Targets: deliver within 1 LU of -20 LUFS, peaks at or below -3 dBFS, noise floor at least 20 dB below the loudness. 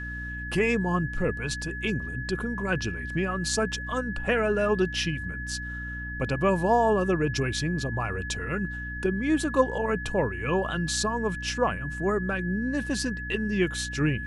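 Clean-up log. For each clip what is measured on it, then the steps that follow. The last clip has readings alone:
hum 60 Hz; harmonics up to 300 Hz; hum level -35 dBFS; steady tone 1700 Hz; tone level -35 dBFS; loudness -27.5 LUFS; peak -7.5 dBFS; loudness target -20.0 LUFS
-> notches 60/120/180/240/300 Hz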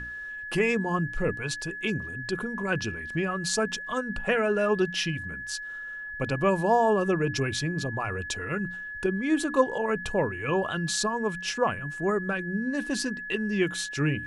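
hum none; steady tone 1700 Hz; tone level -35 dBFS
-> notch 1700 Hz, Q 30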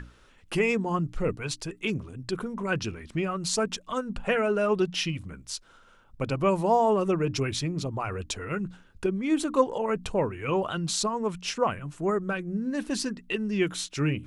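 steady tone none; loudness -28.5 LUFS; peak -8.5 dBFS; loudness target -20.0 LUFS
-> gain +8.5 dB; limiter -3 dBFS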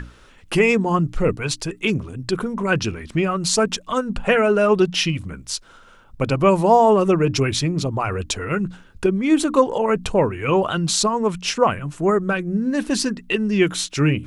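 loudness -20.0 LUFS; peak -3.0 dBFS; noise floor -48 dBFS

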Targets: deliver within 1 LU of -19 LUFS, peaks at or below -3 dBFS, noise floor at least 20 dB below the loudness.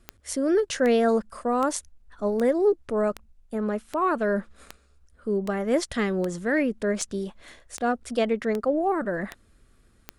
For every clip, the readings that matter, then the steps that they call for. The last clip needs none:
clicks 14; loudness -26.0 LUFS; peak -9.0 dBFS; loudness target -19.0 LUFS
-> de-click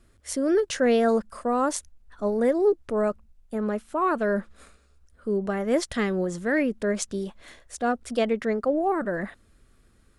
clicks 0; loudness -26.0 LUFS; peak -9.0 dBFS; loudness target -19.0 LUFS
-> gain +7 dB; limiter -3 dBFS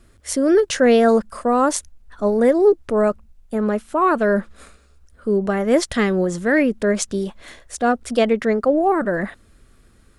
loudness -19.0 LUFS; peak -3.0 dBFS; noise floor -53 dBFS

